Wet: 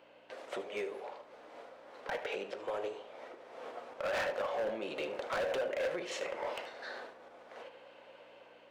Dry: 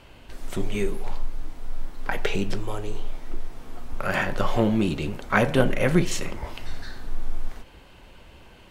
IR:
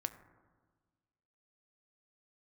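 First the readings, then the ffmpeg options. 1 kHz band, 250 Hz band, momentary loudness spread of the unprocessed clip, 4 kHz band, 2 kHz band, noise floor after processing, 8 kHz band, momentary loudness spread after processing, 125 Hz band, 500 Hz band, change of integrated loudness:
-9.5 dB, -22.5 dB, 19 LU, -9.5 dB, -11.0 dB, -58 dBFS, -14.5 dB, 19 LU, -32.0 dB, -7.5 dB, -11.5 dB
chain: -filter_complex "[0:a]lowpass=2k,agate=range=-9dB:threshold=-39dB:ratio=16:detection=peak,dynaudnorm=f=300:g=5:m=5dB,alimiter=limit=-13.5dB:level=0:latency=1:release=144,acompressor=threshold=-28dB:ratio=4,aeval=exprs='val(0)+0.00447*(sin(2*PI*60*n/s)+sin(2*PI*2*60*n/s)/2+sin(2*PI*3*60*n/s)/3+sin(2*PI*4*60*n/s)/4+sin(2*PI*5*60*n/s)/5)':c=same,crystalizer=i=6.5:c=0,highpass=f=530:t=q:w=4.4,asoftclip=type=hard:threshold=-25.5dB,asplit=2[a][b];[1:a]atrim=start_sample=2205,adelay=76[c];[b][c]afir=irnorm=-1:irlink=0,volume=-12.5dB[d];[a][d]amix=inputs=2:normalize=0,volume=-5.5dB"

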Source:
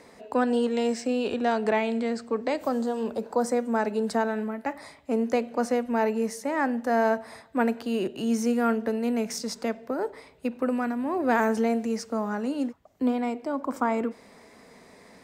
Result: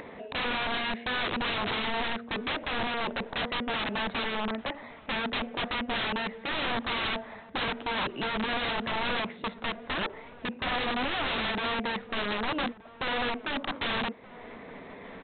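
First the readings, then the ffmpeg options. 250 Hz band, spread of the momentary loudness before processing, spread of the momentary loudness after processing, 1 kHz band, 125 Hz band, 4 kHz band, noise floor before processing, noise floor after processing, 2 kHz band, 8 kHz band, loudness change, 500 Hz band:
-9.5 dB, 7 LU, 7 LU, -2.5 dB, n/a, +11.0 dB, -53 dBFS, -49 dBFS, +4.0 dB, under -40 dB, -3.5 dB, -9.5 dB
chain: -filter_complex "[0:a]acompressor=mode=upward:threshold=-36dB:ratio=2.5,aresample=8000,aeval=exprs='(mod(18.8*val(0)+1,2)-1)/18.8':c=same,aresample=44100,asplit=2[a][b];[b]adelay=1224,volume=-18dB,highshelf=f=4k:g=-27.6[c];[a][c]amix=inputs=2:normalize=0"

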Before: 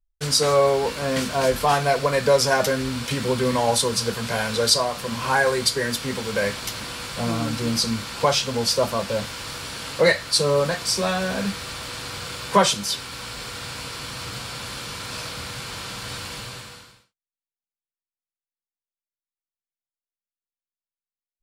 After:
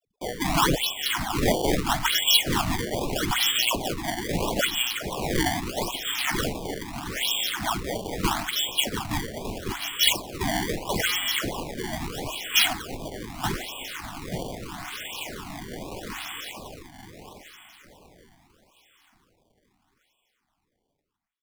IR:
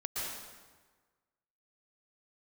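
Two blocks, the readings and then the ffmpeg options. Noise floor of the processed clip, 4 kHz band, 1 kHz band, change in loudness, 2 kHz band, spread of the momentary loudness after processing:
-77 dBFS, +0.5 dB, -4.5 dB, -3.0 dB, -2.0 dB, 15 LU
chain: -filter_complex "[0:a]asplit=2[a][b];[b]adelay=43,volume=-8dB[c];[a][c]amix=inputs=2:normalize=0,aeval=exprs='val(0)*sin(2*PI*190*n/s)':c=same,aecho=1:1:883|1766|2649|3532|4415:0.447|0.192|0.0826|0.0355|0.0153,acrossover=split=590|1200[d][e][f];[e]acompressor=threshold=-39dB:ratio=6[g];[d][g][f]amix=inputs=3:normalize=0,highpass=f=200:p=1,asplit=2[h][i];[i]aeval=exprs='sgn(val(0))*max(abs(val(0))-0.00501,0)':c=same,volume=-5dB[j];[h][j]amix=inputs=2:normalize=0,lowpass=f=3.1k:t=q:w=0.5098,lowpass=f=3.1k:t=q:w=0.6013,lowpass=f=3.1k:t=q:w=0.9,lowpass=f=3.1k:t=q:w=2.563,afreqshift=-3700,acrusher=samples=19:mix=1:aa=0.000001:lfo=1:lforange=30.4:lforate=0.78,afreqshift=-39,afftfilt=real='re*(1-between(b*sr/1024,430*pow(1700/430,0.5+0.5*sin(2*PI*1.4*pts/sr))/1.41,430*pow(1700/430,0.5+0.5*sin(2*PI*1.4*pts/sr))*1.41))':imag='im*(1-between(b*sr/1024,430*pow(1700/430,0.5+0.5*sin(2*PI*1.4*pts/sr))/1.41,430*pow(1700/430,0.5+0.5*sin(2*PI*1.4*pts/sr))*1.41))':win_size=1024:overlap=0.75,volume=-1dB"

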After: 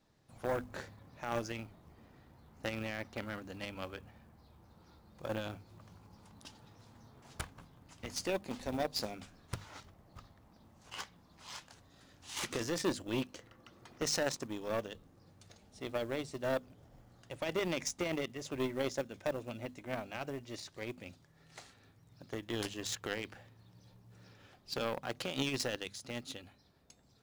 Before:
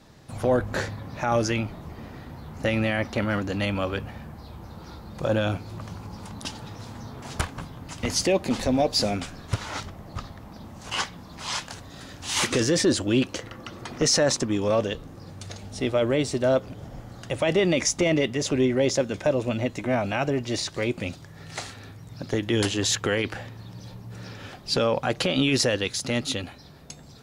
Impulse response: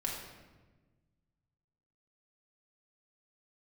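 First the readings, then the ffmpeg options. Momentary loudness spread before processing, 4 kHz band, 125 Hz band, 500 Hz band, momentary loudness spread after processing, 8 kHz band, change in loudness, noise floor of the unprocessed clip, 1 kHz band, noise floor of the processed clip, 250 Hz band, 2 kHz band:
19 LU, -14.0 dB, -17.0 dB, -14.0 dB, 22 LU, -14.5 dB, -14.0 dB, -46 dBFS, -12.5 dB, -65 dBFS, -15.5 dB, -13.0 dB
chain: -af "aeval=exprs='0.316*(cos(1*acos(clip(val(0)/0.316,-1,1)))-cos(1*PI/2))+0.0794*(cos(3*acos(clip(val(0)/0.316,-1,1)))-cos(3*PI/2))':c=same,bandreject=f=50:t=h:w=6,bandreject=f=100:t=h:w=6,bandreject=f=150:t=h:w=6,bandreject=f=200:t=h:w=6,bandreject=f=250:t=h:w=6,acrusher=bits=6:mode=log:mix=0:aa=0.000001,volume=-7dB"

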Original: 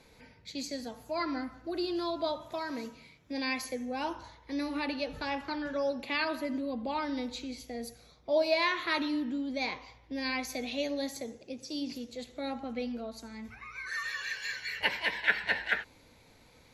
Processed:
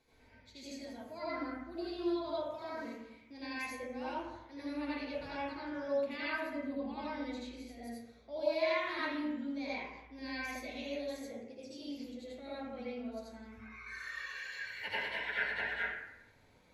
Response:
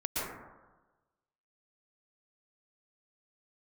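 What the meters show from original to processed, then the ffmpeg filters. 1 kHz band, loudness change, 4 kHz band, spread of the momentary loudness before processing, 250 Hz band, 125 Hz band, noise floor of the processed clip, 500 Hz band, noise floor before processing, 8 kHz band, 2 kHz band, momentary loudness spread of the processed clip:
-6.0 dB, -5.5 dB, -9.0 dB, 13 LU, -5.0 dB, -4.0 dB, -63 dBFS, -4.0 dB, -60 dBFS, -10.5 dB, -5.5 dB, 13 LU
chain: -filter_complex "[0:a]flanger=delay=2.7:depth=9.4:regen=-53:speed=0.29:shape=sinusoidal[a];[1:a]atrim=start_sample=2205,asetrate=66150,aresample=44100[b];[a][b]afir=irnorm=-1:irlink=0,volume=-5.5dB"

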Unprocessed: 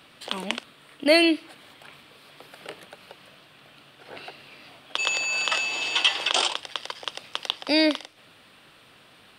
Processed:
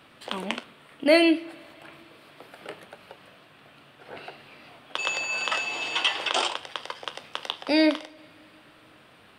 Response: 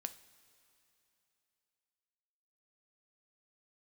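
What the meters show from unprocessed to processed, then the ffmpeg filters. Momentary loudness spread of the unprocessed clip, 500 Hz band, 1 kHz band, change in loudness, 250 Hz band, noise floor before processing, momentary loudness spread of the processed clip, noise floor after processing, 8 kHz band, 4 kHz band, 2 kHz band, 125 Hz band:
22 LU, +0.5 dB, +0.5 dB, -1.5 dB, +1.0 dB, -54 dBFS, 22 LU, -55 dBFS, -5.5 dB, -4.0 dB, -2.0 dB, n/a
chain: -filter_complex "[0:a]flanger=delay=9:depth=4.5:regen=-72:speed=0.34:shape=triangular,asplit=2[a][b];[1:a]atrim=start_sample=2205,lowpass=2.8k[c];[b][c]afir=irnorm=-1:irlink=0,volume=1.5dB[d];[a][d]amix=inputs=2:normalize=0"

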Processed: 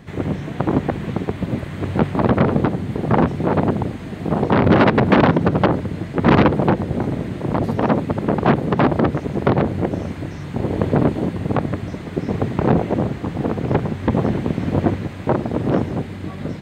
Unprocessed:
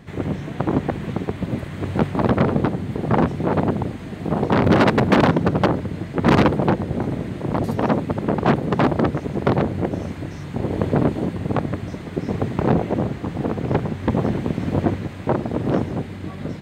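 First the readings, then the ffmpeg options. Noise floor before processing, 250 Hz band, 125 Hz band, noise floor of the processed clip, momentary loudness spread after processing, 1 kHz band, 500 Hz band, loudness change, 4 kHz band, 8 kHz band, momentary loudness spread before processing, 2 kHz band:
-33 dBFS, +2.0 dB, +2.0 dB, -31 dBFS, 11 LU, +2.0 dB, +2.0 dB, +2.0 dB, 0.0 dB, n/a, 11 LU, +2.0 dB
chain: -filter_complex "[0:a]acrossover=split=4300[a][b];[b]acompressor=threshold=-53dB:ratio=4:attack=1:release=60[c];[a][c]amix=inputs=2:normalize=0,volume=2dB"

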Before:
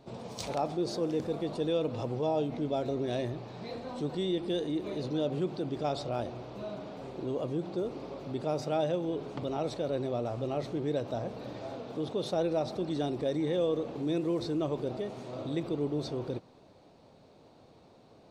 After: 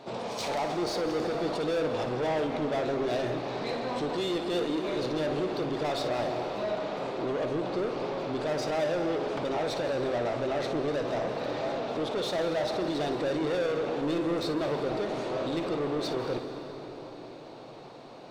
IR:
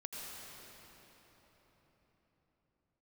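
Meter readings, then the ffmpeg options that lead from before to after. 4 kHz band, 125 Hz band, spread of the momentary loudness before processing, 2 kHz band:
+6.0 dB, -1.5 dB, 10 LU, +11.5 dB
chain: -filter_complex "[0:a]asplit=2[a][b];[b]highpass=f=720:p=1,volume=25dB,asoftclip=type=tanh:threshold=-18.5dB[c];[a][c]amix=inputs=2:normalize=0,lowpass=f=3.6k:p=1,volume=-6dB,asplit=2[d][e];[1:a]atrim=start_sample=2205,adelay=57[f];[e][f]afir=irnorm=-1:irlink=0,volume=-5dB[g];[d][g]amix=inputs=2:normalize=0,volume=-4.5dB"

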